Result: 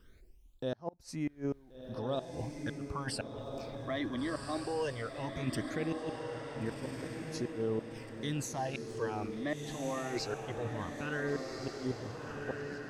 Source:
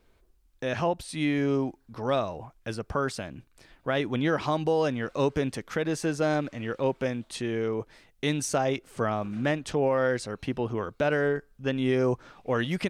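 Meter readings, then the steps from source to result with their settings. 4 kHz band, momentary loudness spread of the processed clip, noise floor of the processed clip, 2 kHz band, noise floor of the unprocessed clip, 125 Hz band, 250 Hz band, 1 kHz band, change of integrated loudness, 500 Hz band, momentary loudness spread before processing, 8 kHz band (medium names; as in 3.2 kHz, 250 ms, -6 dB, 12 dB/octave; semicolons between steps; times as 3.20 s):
-7.0 dB, 6 LU, -59 dBFS, -9.5 dB, -64 dBFS, -8.0 dB, -8.5 dB, -9.5 dB, -9.5 dB, -10.5 dB, 9 LU, -7.0 dB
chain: reverse; compression 10:1, threshold -34 dBFS, peak gain reduction 14 dB; reverse; phase shifter stages 12, 0.18 Hz, lowest notch 140–3600 Hz; inverted gate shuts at -29 dBFS, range -29 dB; echo that smears into a reverb 1462 ms, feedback 40%, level -4 dB; trim +4 dB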